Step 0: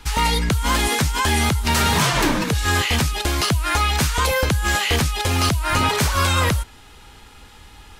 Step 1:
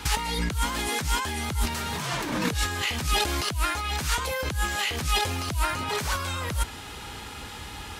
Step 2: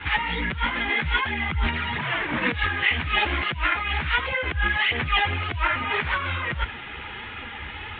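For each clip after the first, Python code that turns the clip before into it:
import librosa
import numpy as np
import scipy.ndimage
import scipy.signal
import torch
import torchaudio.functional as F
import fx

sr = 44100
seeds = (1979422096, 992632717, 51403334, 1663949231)

y1 = scipy.signal.sosfilt(scipy.signal.butter(2, 65.0, 'highpass', fs=sr, output='sos'), x)
y1 = fx.over_compress(y1, sr, threshold_db=-28.0, ratio=-1.0)
y2 = scipy.signal.sosfilt(scipy.signal.butter(12, 3500.0, 'lowpass', fs=sr, output='sos'), y1)
y2 = fx.peak_eq(y2, sr, hz=2000.0, db=10.0, octaves=1.0)
y2 = fx.chorus_voices(y2, sr, voices=2, hz=1.5, base_ms=11, depth_ms=3.0, mix_pct=65)
y2 = y2 * librosa.db_to_amplitude(2.5)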